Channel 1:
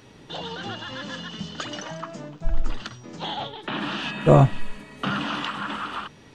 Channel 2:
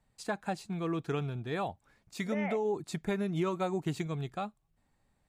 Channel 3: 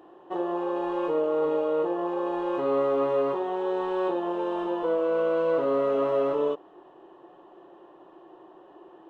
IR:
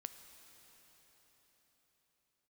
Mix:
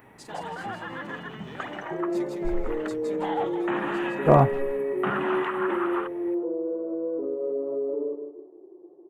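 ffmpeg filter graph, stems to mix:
-filter_complex "[0:a]firequalizer=gain_entry='entry(540,0);entry(770,6);entry(1400,1);entry(2000,5);entry(2800,-8);entry(4800,-26);entry(12000,10)':delay=0.05:min_phase=1,asoftclip=type=hard:threshold=-3.5dB,volume=-3dB,asplit=2[link_01][link_02];[link_02]volume=-17.5dB[link_03];[1:a]acompressor=threshold=-39dB:ratio=3,asoftclip=type=hard:threshold=-35.5dB,volume=-1.5dB,asplit=2[link_04][link_05];[link_05]volume=-4dB[link_06];[2:a]flanger=delay=2.4:depth=7.6:regen=-57:speed=0.45:shape=sinusoidal,lowpass=frequency=380:width_type=q:width=3.5,adelay=1600,volume=-1dB,asplit=2[link_07][link_08];[link_08]volume=-11dB[link_09];[link_04][link_07]amix=inputs=2:normalize=0,highpass=210,alimiter=limit=-23dB:level=0:latency=1:release=13,volume=0dB[link_10];[3:a]atrim=start_sample=2205[link_11];[link_03][link_11]afir=irnorm=-1:irlink=0[link_12];[link_06][link_09]amix=inputs=2:normalize=0,aecho=0:1:161|322|483|644|805:1|0.32|0.102|0.0328|0.0105[link_13];[link_01][link_10][link_12][link_13]amix=inputs=4:normalize=0,lowshelf=frequency=130:gain=-7"

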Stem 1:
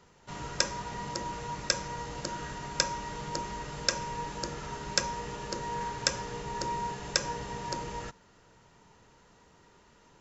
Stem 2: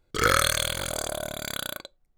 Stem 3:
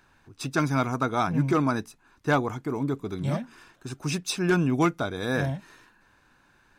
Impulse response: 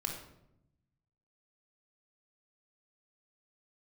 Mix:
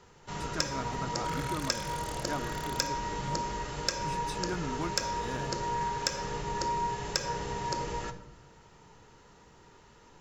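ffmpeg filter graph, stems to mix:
-filter_complex "[0:a]aeval=exprs='0.891*(cos(1*acos(clip(val(0)/0.891,-1,1)))-cos(1*PI/2))+0.1*(cos(5*acos(clip(val(0)/0.891,-1,1)))-cos(5*PI/2))':channel_layout=same,volume=-5.5dB,asplit=2[link_01][link_02];[link_02]volume=-3.5dB[link_03];[1:a]alimiter=limit=-14dB:level=0:latency=1,adelay=1100,volume=-14dB[link_04];[2:a]volume=-13dB[link_05];[3:a]atrim=start_sample=2205[link_06];[link_03][link_06]afir=irnorm=-1:irlink=0[link_07];[link_01][link_04][link_05][link_07]amix=inputs=4:normalize=0,acompressor=threshold=-28dB:ratio=2.5"

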